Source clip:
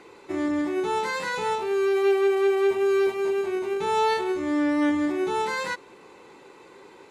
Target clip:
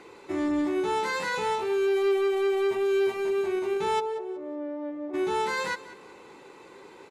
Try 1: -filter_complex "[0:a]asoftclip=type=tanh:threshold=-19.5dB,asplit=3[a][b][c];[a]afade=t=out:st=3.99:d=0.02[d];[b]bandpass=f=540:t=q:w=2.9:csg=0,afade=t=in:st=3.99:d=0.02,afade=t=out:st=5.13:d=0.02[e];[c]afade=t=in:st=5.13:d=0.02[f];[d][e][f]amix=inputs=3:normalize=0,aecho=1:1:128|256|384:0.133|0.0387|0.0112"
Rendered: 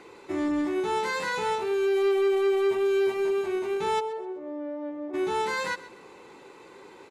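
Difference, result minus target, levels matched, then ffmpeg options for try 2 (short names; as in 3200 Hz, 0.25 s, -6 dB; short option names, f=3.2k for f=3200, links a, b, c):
echo 58 ms early
-filter_complex "[0:a]asoftclip=type=tanh:threshold=-19.5dB,asplit=3[a][b][c];[a]afade=t=out:st=3.99:d=0.02[d];[b]bandpass=f=540:t=q:w=2.9:csg=0,afade=t=in:st=3.99:d=0.02,afade=t=out:st=5.13:d=0.02[e];[c]afade=t=in:st=5.13:d=0.02[f];[d][e][f]amix=inputs=3:normalize=0,aecho=1:1:186|372|558:0.133|0.0387|0.0112"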